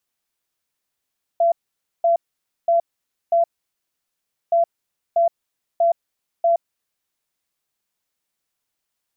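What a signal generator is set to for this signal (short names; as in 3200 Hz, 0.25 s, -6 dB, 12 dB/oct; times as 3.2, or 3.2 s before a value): beep pattern sine 678 Hz, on 0.12 s, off 0.52 s, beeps 4, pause 1.08 s, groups 2, -13 dBFS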